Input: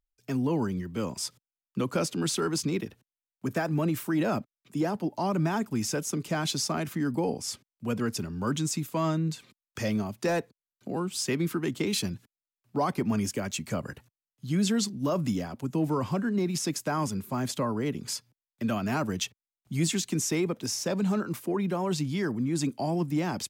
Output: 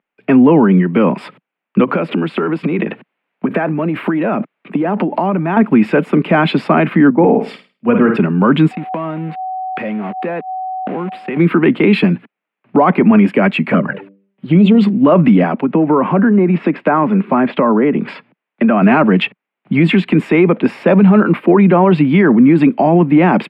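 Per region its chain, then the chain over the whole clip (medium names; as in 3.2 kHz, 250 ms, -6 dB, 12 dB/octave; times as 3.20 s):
1.84–5.57 s: compression 12:1, threshold -35 dBFS + transient shaper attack +3 dB, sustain +8 dB
7.10–8.17 s: treble shelf 5.5 kHz -7 dB + flutter echo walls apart 9.1 m, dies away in 0.44 s + three bands expanded up and down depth 100%
8.71–11.36 s: small samples zeroed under -37 dBFS + whistle 750 Hz -43 dBFS + compression, threshold -41 dBFS
13.72–14.81 s: de-hum 98.59 Hz, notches 6 + touch-sensitive flanger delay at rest 5.6 ms, full sweep at -25 dBFS + decay stretcher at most 150 dB/s
15.43–18.82 s: low-pass that closes with the level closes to 2 kHz, closed at -25 dBFS + high-pass 150 Hz + compression, threshold -30 dBFS
whole clip: elliptic band-pass 180–2500 Hz, stop band 40 dB; loudness maximiser +24.5 dB; trim -1 dB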